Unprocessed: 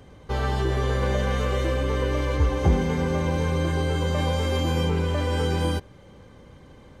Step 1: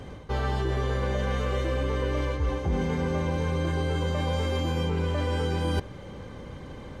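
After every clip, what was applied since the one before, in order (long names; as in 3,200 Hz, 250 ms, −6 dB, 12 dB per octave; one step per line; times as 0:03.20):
reversed playback
downward compressor 6 to 1, threshold −32 dBFS, peak gain reduction 16.5 dB
reversed playback
high-shelf EQ 8,100 Hz −7 dB
level +7.5 dB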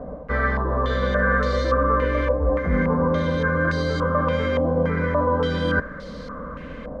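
phaser with its sweep stopped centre 550 Hz, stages 8
bit-depth reduction 10 bits, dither none
low-pass on a step sequencer 3.5 Hz 750–4,400 Hz
level +8.5 dB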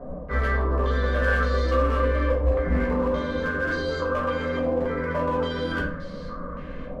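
hard clipping −14.5 dBFS, distortion −21 dB
rectangular room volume 56 cubic metres, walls mixed, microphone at 0.96 metres
level −7.5 dB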